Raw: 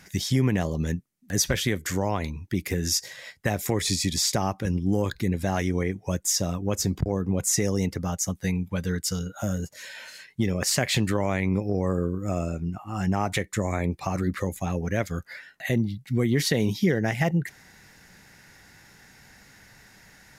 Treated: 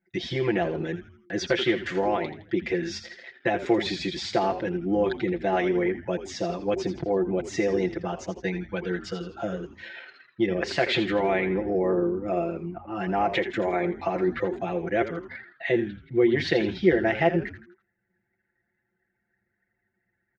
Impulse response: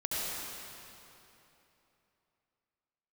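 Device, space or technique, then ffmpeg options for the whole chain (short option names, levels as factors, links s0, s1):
frequency-shifting delay pedal into a guitar cabinet: -filter_complex "[0:a]anlmdn=0.398,adynamicequalizer=threshold=0.00794:dfrequency=8400:dqfactor=1.7:tfrequency=8400:tqfactor=1.7:attack=5:release=100:ratio=0.375:range=2.5:mode=boostabove:tftype=bell,bass=f=250:g=-14,treble=f=4000:g=-1,aecho=1:1:5.9:0.88,asplit=5[s0][s1][s2][s3][s4];[s1]adelay=82,afreqshift=-130,volume=0.282[s5];[s2]adelay=164,afreqshift=-260,volume=0.119[s6];[s3]adelay=246,afreqshift=-390,volume=0.0495[s7];[s4]adelay=328,afreqshift=-520,volume=0.0209[s8];[s0][s5][s6][s7][s8]amix=inputs=5:normalize=0,highpass=86,equalizer=f=100:t=q:w=4:g=4,equalizer=f=360:t=q:w=4:g=9,equalizer=f=730:t=q:w=4:g=4,equalizer=f=1100:t=q:w=4:g=-6,lowpass=f=3600:w=0.5412,lowpass=f=3600:w=1.3066"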